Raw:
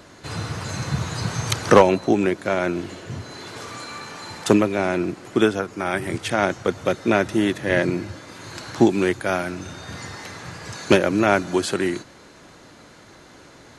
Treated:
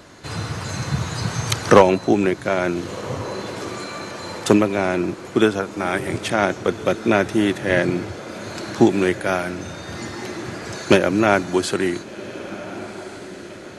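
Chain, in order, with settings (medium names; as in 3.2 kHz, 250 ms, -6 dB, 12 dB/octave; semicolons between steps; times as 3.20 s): echo that smears into a reverb 1486 ms, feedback 52%, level -15 dB; trim +1.5 dB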